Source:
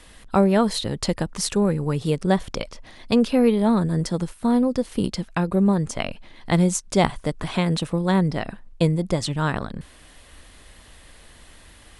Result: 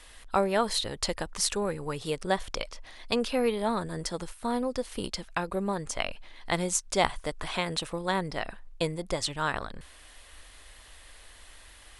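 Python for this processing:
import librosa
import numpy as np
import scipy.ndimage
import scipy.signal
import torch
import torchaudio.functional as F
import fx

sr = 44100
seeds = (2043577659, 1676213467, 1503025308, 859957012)

y = fx.peak_eq(x, sr, hz=170.0, db=-14.0, octaves=2.3)
y = F.gain(torch.from_numpy(y), -1.5).numpy()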